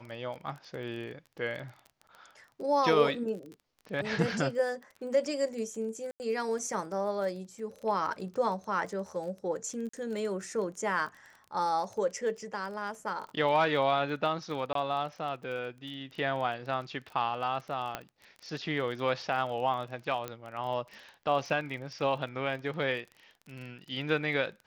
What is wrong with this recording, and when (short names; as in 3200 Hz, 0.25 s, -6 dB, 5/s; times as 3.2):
crackle 26/s -39 dBFS
6.11–6.2 gap 89 ms
9.89–9.93 gap 44 ms
14.73–14.75 gap 23 ms
17.95 pop -18 dBFS
20.28 pop -21 dBFS